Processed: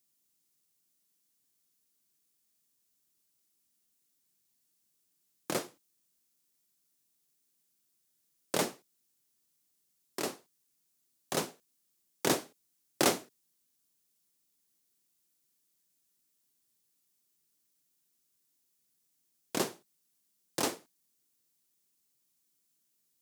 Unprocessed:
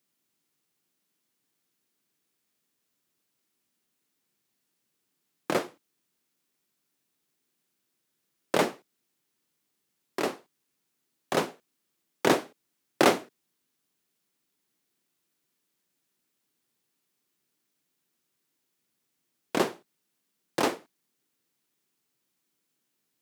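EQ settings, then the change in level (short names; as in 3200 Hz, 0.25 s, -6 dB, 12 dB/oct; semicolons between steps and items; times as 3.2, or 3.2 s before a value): tone controls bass +2 dB, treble +12 dB; low shelf 82 Hz +10 dB; -8.0 dB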